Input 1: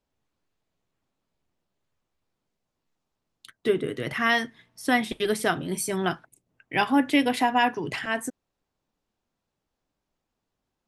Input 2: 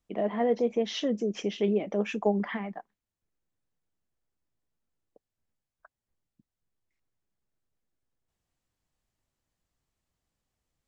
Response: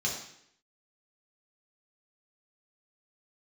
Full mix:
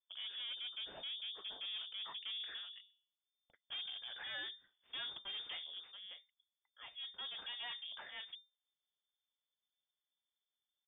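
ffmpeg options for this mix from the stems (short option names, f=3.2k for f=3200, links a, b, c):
-filter_complex "[0:a]adelay=50,volume=-1dB,afade=t=in:st=3.34:d=0.33:silence=0.354813,afade=t=out:st=5.51:d=0.48:silence=0.281838,afade=t=in:st=7.15:d=0.37:silence=0.334965[a];[1:a]bandreject=f=98.52:t=h:w=4,bandreject=f=197.04:t=h:w=4,bandreject=f=295.56:t=h:w=4,bandreject=f=394.08:t=h:w=4,bandreject=f=492.6:t=h:w=4,bandreject=f=591.12:t=h:w=4,bandreject=f=689.64:t=h:w=4,bandreject=f=788.16:t=h:w=4,bandreject=f=886.68:t=h:w=4,bandreject=f=985.2:t=h:w=4,bandreject=f=1.08372k:t=h:w=4,bandreject=f=1.18224k:t=h:w=4,bandreject=f=1.28076k:t=h:w=4,bandreject=f=1.37928k:t=h:w=4,bandreject=f=1.4778k:t=h:w=4,volume=-8dB[b];[a][b]amix=inputs=2:normalize=0,equalizer=f=1k:t=o:w=0.93:g=-13,aeval=exprs='(tanh(126*val(0)+0.7)-tanh(0.7))/126':c=same,lowpass=f=3.1k:t=q:w=0.5098,lowpass=f=3.1k:t=q:w=0.6013,lowpass=f=3.1k:t=q:w=0.9,lowpass=f=3.1k:t=q:w=2.563,afreqshift=-3600"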